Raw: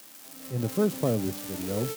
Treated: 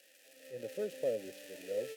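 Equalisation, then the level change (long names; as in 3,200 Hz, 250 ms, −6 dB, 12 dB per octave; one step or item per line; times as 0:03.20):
formant filter e
high-shelf EQ 3,400 Hz +12 dB
high-shelf EQ 7,100 Hz +7 dB
0.0 dB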